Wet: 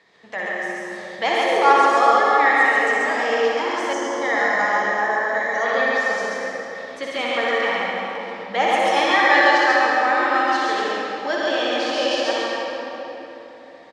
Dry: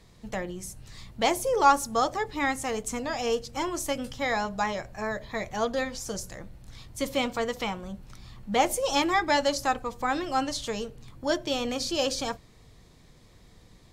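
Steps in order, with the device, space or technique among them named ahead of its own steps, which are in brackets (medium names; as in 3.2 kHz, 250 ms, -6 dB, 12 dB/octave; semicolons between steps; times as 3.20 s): station announcement (band-pass 420–3900 Hz; peaking EQ 1.8 kHz +10 dB 0.29 oct; loudspeakers at several distances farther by 21 m -4 dB, 47 m -2 dB; reverberation RT60 3.6 s, pre-delay 70 ms, DRR -3 dB); 3.93–5.66 s: graphic EQ with 31 bands 2.5 kHz -11 dB, 4 kHz -6 dB, 6.3 kHz +9 dB, 12.5 kHz -10 dB; trim +2 dB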